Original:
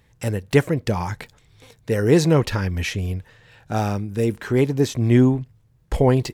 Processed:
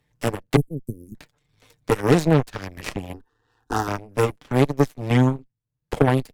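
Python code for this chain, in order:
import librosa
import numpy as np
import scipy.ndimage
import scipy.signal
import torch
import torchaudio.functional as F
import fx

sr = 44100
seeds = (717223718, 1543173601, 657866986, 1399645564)

p1 = fx.cheby2_bandstop(x, sr, low_hz=550.0, high_hz=3700.0, order=4, stop_db=60, at=(0.56, 1.15))
p2 = p1 + 0.54 * np.pad(p1, (int(6.7 * sr / 1000.0), 0))[:len(p1)]
p3 = fx.rider(p2, sr, range_db=3, speed_s=0.5)
p4 = p2 + (p3 * librosa.db_to_amplitude(-1.5))
p5 = fx.cheby_harmonics(p4, sr, harmonics=(3, 4, 7), levels_db=(-39, -16, -17), full_scale_db=3.0)
p6 = fx.fixed_phaser(p5, sr, hz=600.0, stages=6, at=(3.13, 3.88))
p7 = fx.band_squash(p6, sr, depth_pct=70)
y = p7 * librosa.db_to_amplitude(-5.5)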